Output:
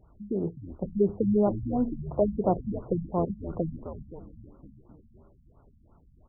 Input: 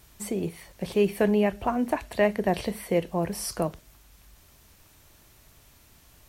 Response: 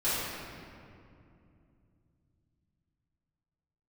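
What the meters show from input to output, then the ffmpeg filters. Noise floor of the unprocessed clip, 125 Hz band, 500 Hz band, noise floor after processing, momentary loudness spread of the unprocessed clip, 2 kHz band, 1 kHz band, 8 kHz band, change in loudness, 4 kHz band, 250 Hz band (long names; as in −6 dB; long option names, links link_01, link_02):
−57 dBFS, +1.5 dB, −2.5 dB, −60 dBFS, 9 LU, below −30 dB, −3.5 dB, below −40 dB, −1.5 dB, below −40 dB, 0.0 dB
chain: -filter_complex "[0:a]asplit=9[link_01][link_02][link_03][link_04][link_05][link_06][link_07][link_08][link_09];[link_02]adelay=259,afreqshift=-92,volume=-12dB[link_10];[link_03]adelay=518,afreqshift=-184,volume=-15.9dB[link_11];[link_04]adelay=777,afreqshift=-276,volume=-19.8dB[link_12];[link_05]adelay=1036,afreqshift=-368,volume=-23.6dB[link_13];[link_06]adelay=1295,afreqshift=-460,volume=-27.5dB[link_14];[link_07]adelay=1554,afreqshift=-552,volume=-31.4dB[link_15];[link_08]adelay=1813,afreqshift=-644,volume=-35.3dB[link_16];[link_09]adelay=2072,afreqshift=-736,volume=-39.1dB[link_17];[link_01][link_10][link_11][link_12][link_13][link_14][link_15][link_16][link_17]amix=inputs=9:normalize=0,afftfilt=real='re*lt(b*sr/1024,240*pow(1500/240,0.5+0.5*sin(2*PI*2.9*pts/sr)))':imag='im*lt(b*sr/1024,240*pow(1500/240,0.5+0.5*sin(2*PI*2.9*pts/sr)))':win_size=1024:overlap=0.75"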